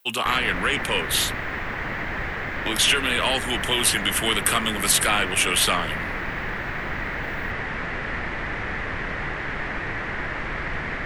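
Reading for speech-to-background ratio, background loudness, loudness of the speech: 7.0 dB, −28.5 LKFS, −21.5 LKFS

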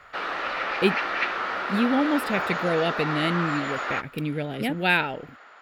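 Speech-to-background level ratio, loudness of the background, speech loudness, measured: 2.0 dB, −28.0 LKFS, −26.0 LKFS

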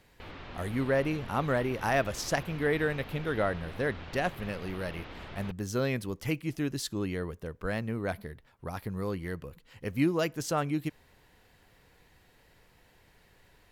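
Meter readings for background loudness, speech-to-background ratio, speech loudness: −45.5 LKFS, 13.0 dB, −32.5 LKFS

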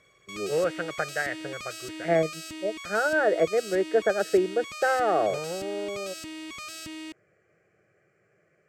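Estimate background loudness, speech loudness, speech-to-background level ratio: −38.0 LKFS, −27.0 LKFS, 11.0 dB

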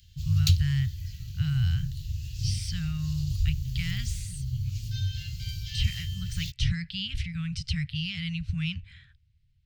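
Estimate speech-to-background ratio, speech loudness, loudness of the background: 0.5 dB, −32.0 LKFS, −32.5 LKFS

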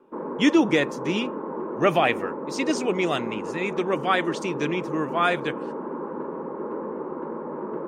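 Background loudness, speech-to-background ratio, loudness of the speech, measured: −32.5 LKFS, 7.5 dB, −25.0 LKFS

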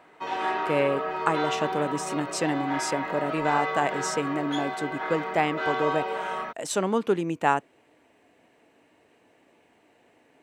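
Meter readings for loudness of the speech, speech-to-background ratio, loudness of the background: −28.0 LKFS, 2.5 dB, −30.5 LKFS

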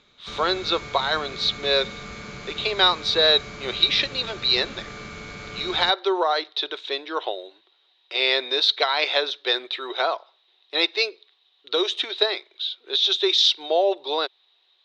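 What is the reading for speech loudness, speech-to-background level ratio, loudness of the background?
−22.0 LKFS, 15.0 dB, −37.0 LKFS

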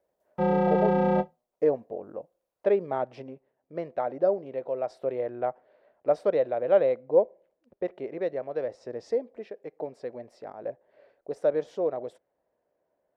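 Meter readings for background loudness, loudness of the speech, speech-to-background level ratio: −25.0 LKFS, −29.5 LKFS, −4.5 dB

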